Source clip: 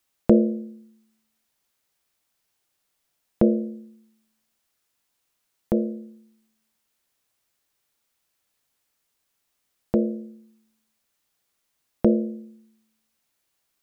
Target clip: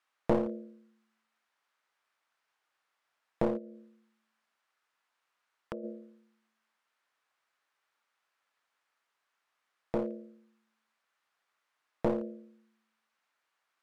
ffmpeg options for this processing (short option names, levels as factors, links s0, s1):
-filter_complex "[0:a]asplit=3[s0][s1][s2];[s0]afade=t=out:st=3.57:d=0.02[s3];[s1]acompressor=threshold=0.0355:ratio=6,afade=t=in:st=3.57:d=0.02,afade=t=out:st=5.83:d=0.02[s4];[s2]afade=t=in:st=5.83:d=0.02[s5];[s3][s4][s5]amix=inputs=3:normalize=0,bandpass=f=1300:t=q:w=1.3:csg=0,aeval=exprs='clip(val(0),-1,0.0168)':c=same,volume=1.78"